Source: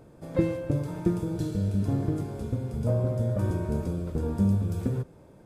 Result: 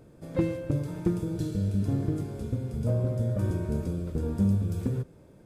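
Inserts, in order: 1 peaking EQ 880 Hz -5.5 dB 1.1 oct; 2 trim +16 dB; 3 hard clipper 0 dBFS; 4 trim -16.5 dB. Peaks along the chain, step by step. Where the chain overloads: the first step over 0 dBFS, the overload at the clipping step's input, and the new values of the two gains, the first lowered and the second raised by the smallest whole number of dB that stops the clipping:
-11.5 dBFS, +4.5 dBFS, 0.0 dBFS, -16.5 dBFS; step 2, 4.5 dB; step 2 +11 dB, step 4 -11.5 dB

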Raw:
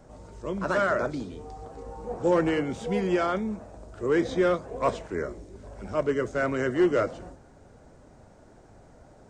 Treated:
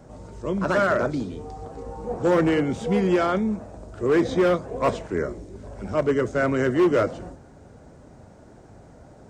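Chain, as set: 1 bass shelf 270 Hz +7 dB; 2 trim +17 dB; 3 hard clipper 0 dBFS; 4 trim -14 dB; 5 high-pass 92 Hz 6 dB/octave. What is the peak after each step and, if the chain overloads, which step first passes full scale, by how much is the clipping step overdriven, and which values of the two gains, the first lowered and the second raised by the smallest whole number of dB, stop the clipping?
-10.0 dBFS, +7.0 dBFS, 0.0 dBFS, -14.0 dBFS, -11.5 dBFS; step 2, 7.0 dB; step 2 +10 dB, step 4 -7 dB

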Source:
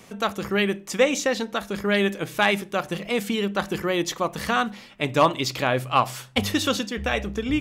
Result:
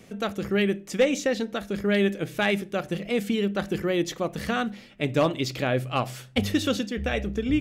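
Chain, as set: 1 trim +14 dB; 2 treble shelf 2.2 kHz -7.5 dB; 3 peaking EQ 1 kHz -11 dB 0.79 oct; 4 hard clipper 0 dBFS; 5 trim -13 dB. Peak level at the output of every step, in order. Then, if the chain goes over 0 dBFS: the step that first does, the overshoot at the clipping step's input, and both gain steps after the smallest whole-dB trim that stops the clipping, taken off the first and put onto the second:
+7.0 dBFS, +6.5 dBFS, +4.5 dBFS, 0.0 dBFS, -13.0 dBFS; step 1, 4.5 dB; step 1 +9 dB, step 5 -8 dB

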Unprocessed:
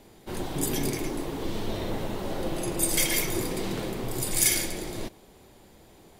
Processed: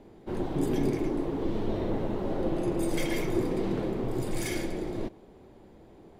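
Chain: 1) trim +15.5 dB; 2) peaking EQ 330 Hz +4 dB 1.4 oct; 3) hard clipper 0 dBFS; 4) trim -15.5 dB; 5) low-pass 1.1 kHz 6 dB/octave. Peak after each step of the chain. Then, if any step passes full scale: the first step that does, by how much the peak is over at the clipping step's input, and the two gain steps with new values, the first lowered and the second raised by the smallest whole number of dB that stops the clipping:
+9.0 dBFS, +9.0 dBFS, 0.0 dBFS, -15.5 dBFS, -16.0 dBFS; step 1, 9.0 dB; step 1 +6.5 dB, step 4 -6.5 dB

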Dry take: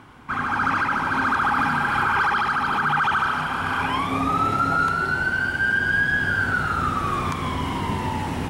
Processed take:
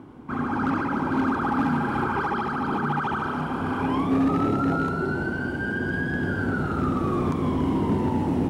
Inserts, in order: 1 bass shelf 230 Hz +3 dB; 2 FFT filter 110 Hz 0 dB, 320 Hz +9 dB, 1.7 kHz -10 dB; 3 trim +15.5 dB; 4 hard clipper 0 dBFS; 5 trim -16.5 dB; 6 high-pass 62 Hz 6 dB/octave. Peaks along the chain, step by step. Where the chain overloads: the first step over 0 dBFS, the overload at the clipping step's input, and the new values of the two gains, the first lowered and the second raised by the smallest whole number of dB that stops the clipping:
-10.0 dBFS, -9.0 dBFS, +6.5 dBFS, 0.0 dBFS, -16.5 dBFS, -14.0 dBFS; step 3, 6.5 dB; step 3 +8.5 dB, step 5 -9.5 dB

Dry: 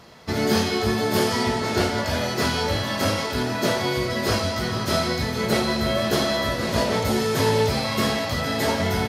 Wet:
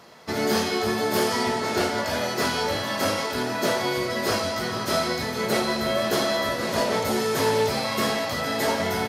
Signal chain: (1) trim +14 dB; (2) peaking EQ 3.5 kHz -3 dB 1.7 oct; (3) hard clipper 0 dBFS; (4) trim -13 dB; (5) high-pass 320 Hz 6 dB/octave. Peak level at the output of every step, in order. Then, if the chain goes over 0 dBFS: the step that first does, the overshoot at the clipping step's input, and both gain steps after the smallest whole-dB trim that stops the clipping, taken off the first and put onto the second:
+6.5 dBFS, +6.0 dBFS, 0.0 dBFS, -13.0 dBFS, -11.0 dBFS; step 1, 6.0 dB; step 1 +8 dB, step 4 -7 dB

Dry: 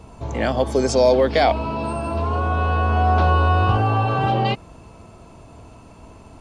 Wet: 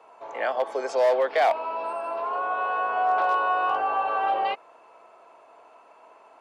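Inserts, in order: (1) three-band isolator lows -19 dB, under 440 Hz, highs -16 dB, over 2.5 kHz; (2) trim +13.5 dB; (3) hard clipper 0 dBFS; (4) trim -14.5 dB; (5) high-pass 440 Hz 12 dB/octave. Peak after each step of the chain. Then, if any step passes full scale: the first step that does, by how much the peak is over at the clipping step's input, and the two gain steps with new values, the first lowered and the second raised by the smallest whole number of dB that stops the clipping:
-8.5 dBFS, +5.0 dBFS, 0.0 dBFS, -14.5 dBFS, -11.0 dBFS; step 2, 5.0 dB; step 2 +8.5 dB, step 4 -9.5 dB

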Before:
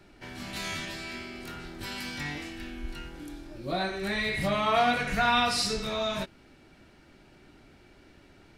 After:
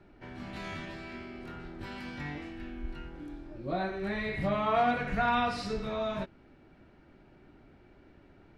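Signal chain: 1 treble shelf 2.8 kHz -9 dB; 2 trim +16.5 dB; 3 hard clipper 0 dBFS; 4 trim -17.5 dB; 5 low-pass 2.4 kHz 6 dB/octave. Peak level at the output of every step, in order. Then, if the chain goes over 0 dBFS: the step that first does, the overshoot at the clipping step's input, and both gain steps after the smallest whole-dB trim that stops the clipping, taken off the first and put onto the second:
-13.0 dBFS, +3.5 dBFS, 0.0 dBFS, -17.5 dBFS, -17.5 dBFS; step 2, 3.5 dB; step 2 +12.5 dB, step 4 -13.5 dB

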